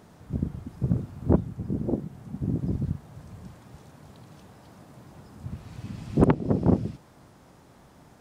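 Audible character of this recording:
background noise floor −54 dBFS
spectral slope −7.5 dB per octave

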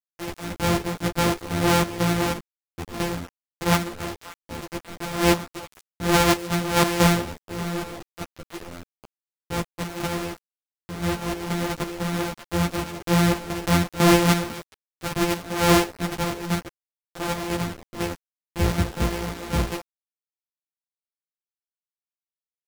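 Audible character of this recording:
a buzz of ramps at a fixed pitch in blocks of 256 samples
chopped level 2 Hz, depth 65%, duty 65%
a quantiser's noise floor 6 bits, dither none
a shimmering, thickened sound

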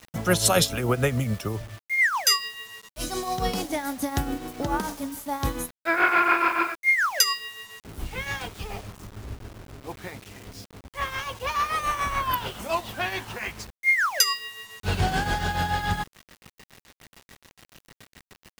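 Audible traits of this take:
tremolo triangle 7 Hz, depth 70%
a quantiser's noise floor 8 bits, dither none

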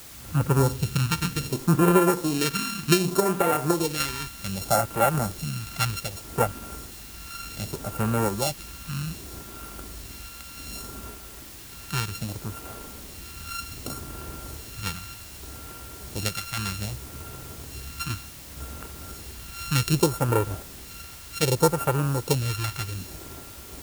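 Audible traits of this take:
a buzz of ramps at a fixed pitch in blocks of 32 samples
phaser sweep stages 2, 0.65 Hz, lowest notch 510–4,500 Hz
sample-and-hold tremolo
a quantiser's noise floor 8 bits, dither triangular

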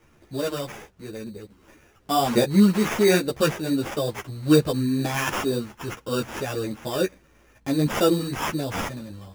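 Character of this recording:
aliases and images of a low sample rate 4,200 Hz, jitter 0%
a shimmering, thickened sound

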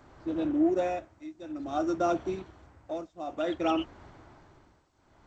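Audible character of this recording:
tremolo triangle 0.56 Hz, depth 95%
G.722

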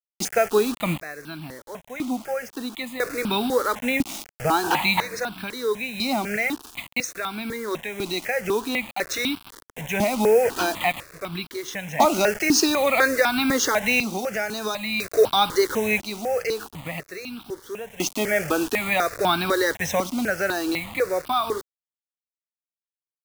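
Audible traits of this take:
a quantiser's noise floor 6 bits, dither none
sample-and-hold tremolo 1 Hz, depth 80%
notches that jump at a steady rate 4 Hz 460–1,900 Hz

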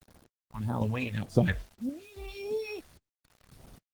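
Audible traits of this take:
phaser sweep stages 2, 1.7 Hz, lowest notch 150–2,400 Hz
sample-and-hold tremolo 3.7 Hz, depth 95%
a quantiser's noise floor 10 bits, dither none
Opus

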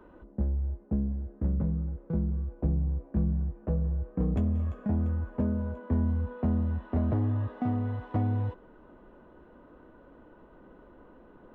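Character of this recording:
background noise floor −55 dBFS
spectral slope −9.0 dB per octave

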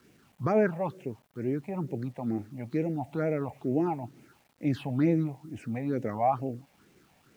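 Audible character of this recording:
phaser sweep stages 6, 2.2 Hz, lowest notch 340–1,200 Hz
a quantiser's noise floor 12 bits, dither none

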